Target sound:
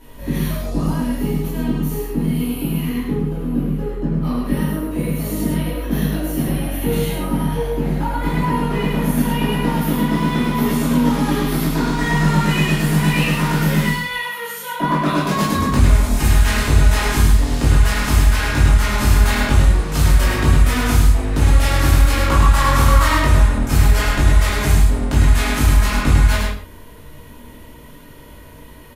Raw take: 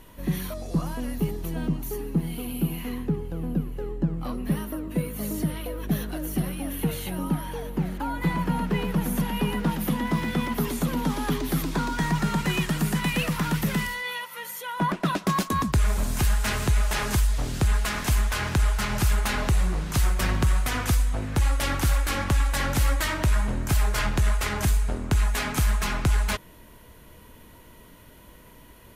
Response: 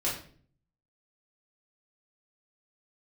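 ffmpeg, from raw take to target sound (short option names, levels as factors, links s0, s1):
-filter_complex "[0:a]asettb=1/sr,asplit=3[s0][s1][s2];[s0]atrim=end=22.254[s3];[s1]atrim=start=22.25:end=23.17,asetpts=PTS-STARTPTS,afade=t=in:d=0.004:c=qsin,afade=t=out:st=0.916:d=0.004:c=qsin,equalizer=f=1100:t=o:w=0.41:g=12[s4];[s2]atrim=start=23.166[s5];[s3][s4]acrossfade=d=0.004:c1=hsin:c2=qsin[s6];[s6][s5]acrossfade=d=0.004:c1=qsin:c2=hsin,aecho=1:1:103:0.631[s7];[1:a]atrim=start_sample=2205,afade=t=out:st=0.22:d=0.01,atrim=end_sample=10143,asetrate=37044,aresample=44100[s8];[s7][s8]afir=irnorm=-1:irlink=0,volume=0.794"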